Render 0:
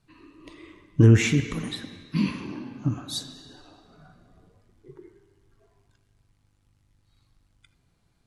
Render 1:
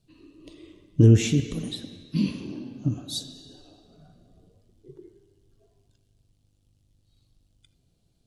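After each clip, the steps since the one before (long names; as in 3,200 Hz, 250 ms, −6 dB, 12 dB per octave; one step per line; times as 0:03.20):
flat-topped bell 1,400 Hz −12.5 dB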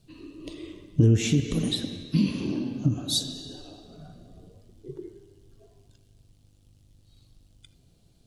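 downward compressor 2.5 to 1, threshold −29 dBFS, peak gain reduction 12 dB
level +7.5 dB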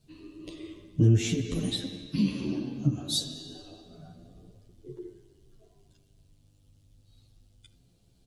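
barber-pole flanger 10.4 ms +0.32 Hz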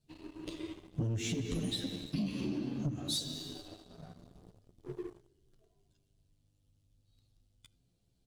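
leveller curve on the samples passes 2
downward compressor 6 to 1, threshold −25 dBFS, peak gain reduction 10.5 dB
level −7 dB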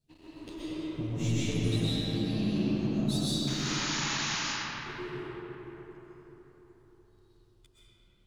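sound drawn into the spectrogram noise, 0:03.47–0:04.40, 810–7,100 Hz −37 dBFS
comb and all-pass reverb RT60 4.5 s, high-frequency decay 0.45×, pre-delay 85 ms, DRR −10 dB
level −4 dB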